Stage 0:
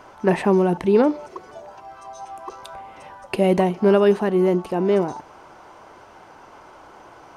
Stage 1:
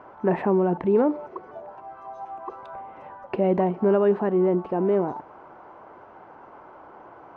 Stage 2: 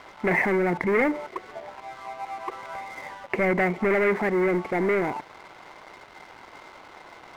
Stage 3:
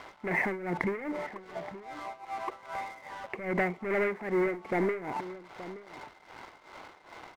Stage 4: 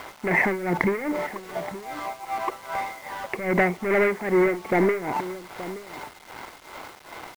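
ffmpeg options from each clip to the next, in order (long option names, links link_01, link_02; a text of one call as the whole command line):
ffmpeg -i in.wav -filter_complex "[0:a]lowpass=1400,lowshelf=frequency=82:gain=-11.5,asplit=2[link_01][link_02];[link_02]alimiter=limit=-17dB:level=0:latency=1:release=75,volume=1.5dB[link_03];[link_01][link_03]amix=inputs=2:normalize=0,volume=-6.5dB" out.wav
ffmpeg -i in.wav -af "asoftclip=type=tanh:threshold=-21.5dB,lowpass=frequency=2100:width_type=q:width=15,aeval=exprs='sgn(val(0))*max(abs(val(0))-0.00447,0)':channel_layout=same,volume=2.5dB" out.wav
ffmpeg -i in.wav -filter_complex "[0:a]acompressor=threshold=-24dB:ratio=6,tremolo=f=2.5:d=0.81,asplit=2[link_01][link_02];[link_02]adelay=874.6,volume=-14dB,highshelf=frequency=4000:gain=-19.7[link_03];[link_01][link_03]amix=inputs=2:normalize=0" out.wav
ffmpeg -i in.wav -af "acrusher=bits=8:mix=0:aa=0.000001,volume=8dB" out.wav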